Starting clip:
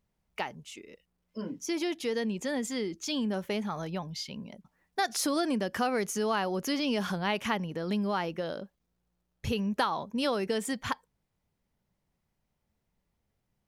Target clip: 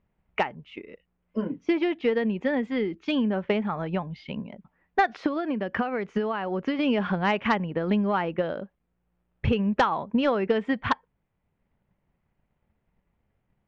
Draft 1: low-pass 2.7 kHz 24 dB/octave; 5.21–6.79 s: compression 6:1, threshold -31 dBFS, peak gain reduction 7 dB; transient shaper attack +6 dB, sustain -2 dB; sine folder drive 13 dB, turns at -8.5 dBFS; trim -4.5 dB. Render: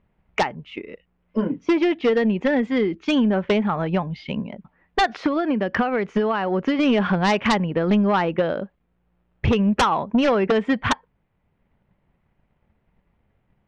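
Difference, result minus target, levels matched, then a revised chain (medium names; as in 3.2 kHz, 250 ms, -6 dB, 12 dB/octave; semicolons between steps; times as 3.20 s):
sine folder: distortion +10 dB
low-pass 2.7 kHz 24 dB/octave; 5.21–6.79 s: compression 6:1, threshold -31 dBFS, peak gain reduction 7 dB; transient shaper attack +6 dB, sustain -2 dB; sine folder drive 6 dB, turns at -8.5 dBFS; trim -4.5 dB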